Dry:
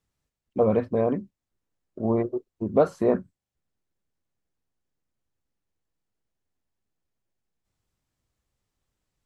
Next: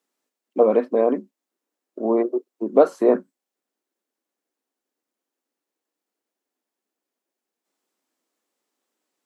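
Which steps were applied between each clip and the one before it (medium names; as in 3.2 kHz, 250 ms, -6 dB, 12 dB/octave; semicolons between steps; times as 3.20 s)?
steep high-pass 250 Hz 36 dB/octave; peaking EQ 2.9 kHz -3 dB 3 oct; trim +6 dB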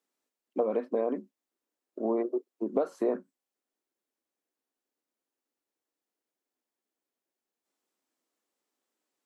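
compression 5:1, threshold -19 dBFS, peak gain reduction 10 dB; trim -5.5 dB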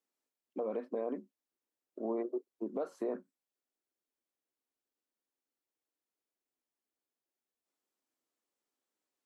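peak limiter -20.5 dBFS, peak gain reduction 5.5 dB; trim -6 dB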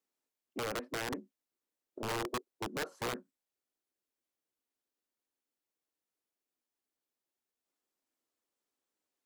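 integer overflow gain 30 dB; loudspeaker Doppler distortion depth 0.16 ms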